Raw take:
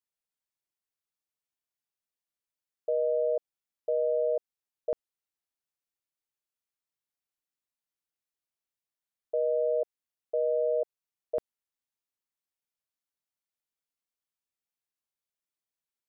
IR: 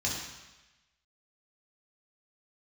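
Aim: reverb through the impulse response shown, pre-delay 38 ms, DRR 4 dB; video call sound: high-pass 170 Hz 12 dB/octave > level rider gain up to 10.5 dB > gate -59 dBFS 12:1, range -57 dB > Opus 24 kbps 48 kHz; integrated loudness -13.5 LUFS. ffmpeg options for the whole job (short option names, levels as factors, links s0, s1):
-filter_complex "[0:a]asplit=2[s0][s1];[1:a]atrim=start_sample=2205,adelay=38[s2];[s1][s2]afir=irnorm=-1:irlink=0,volume=0.299[s3];[s0][s3]amix=inputs=2:normalize=0,highpass=170,dynaudnorm=m=3.35,agate=range=0.00141:threshold=0.00112:ratio=12,volume=4.47" -ar 48000 -c:a libopus -b:a 24k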